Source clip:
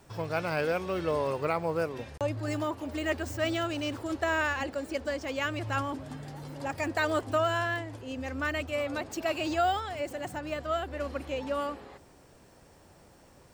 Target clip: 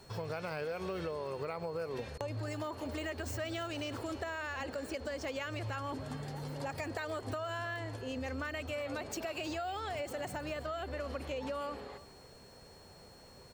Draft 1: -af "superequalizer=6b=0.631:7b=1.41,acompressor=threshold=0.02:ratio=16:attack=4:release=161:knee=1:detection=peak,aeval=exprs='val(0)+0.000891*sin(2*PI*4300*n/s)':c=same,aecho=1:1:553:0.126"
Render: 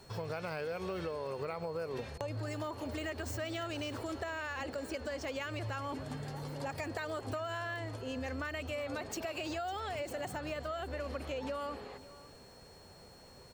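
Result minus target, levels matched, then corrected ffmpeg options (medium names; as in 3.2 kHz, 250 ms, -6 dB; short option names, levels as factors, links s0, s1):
echo 239 ms late
-af "superequalizer=6b=0.631:7b=1.41,acompressor=threshold=0.02:ratio=16:attack=4:release=161:knee=1:detection=peak,aeval=exprs='val(0)+0.000891*sin(2*PI*4300*n/s)':c=same,aecho=1:1:314:0.126"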